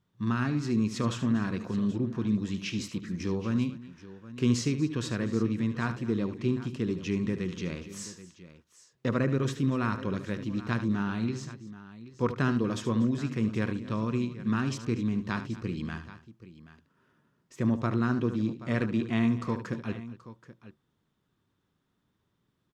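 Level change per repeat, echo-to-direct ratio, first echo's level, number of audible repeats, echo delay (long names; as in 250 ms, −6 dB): repeats not evenly spaced, −9.5 dB, −11.5 dB, 3, 74 ms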